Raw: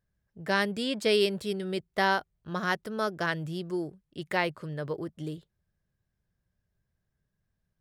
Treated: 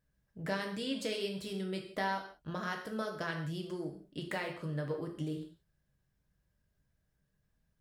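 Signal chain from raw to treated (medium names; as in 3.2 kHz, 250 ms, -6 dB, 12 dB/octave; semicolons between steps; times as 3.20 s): compression 4:1, threshold -37 dBFS, peak gain reduction 14 dB; gated-style reverb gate 210 ms falling, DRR 2 dB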